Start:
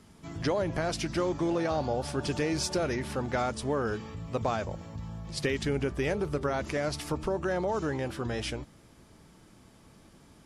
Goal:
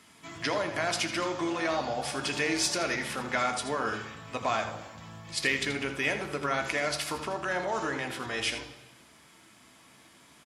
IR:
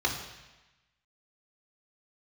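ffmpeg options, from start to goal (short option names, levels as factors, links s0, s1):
-filter_complex "[0:a]highpass=f=1000:p=1,aecho=1:1:81:0.282,asplit=2[s0][s1];[1:a]atrim=start_sample=2205[s2];[s1][s2]afir=irnorm=-1:irlink=0,volume=0.188[s3];[s0][s3]amix=inputs=2:normalize=0,volume=2"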